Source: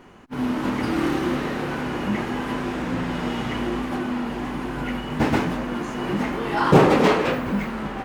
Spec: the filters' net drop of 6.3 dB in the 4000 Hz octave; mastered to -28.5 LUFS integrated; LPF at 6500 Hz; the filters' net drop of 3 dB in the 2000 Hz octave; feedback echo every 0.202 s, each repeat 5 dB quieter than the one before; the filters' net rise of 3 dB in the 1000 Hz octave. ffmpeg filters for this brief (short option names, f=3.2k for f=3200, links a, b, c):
-af "lowpass=6.5k,equalizer=f=1k:t=o:g=5,equalizer=f=2k:t=o:g=-4.5,equalizer=f=4k:t=o:g=-7,aecho=1:1:202|404|606|808|1010|1212|1414:0.562|0.315|0.176|0.0988|0.0553|0.031|0.0173,volume=-7dB"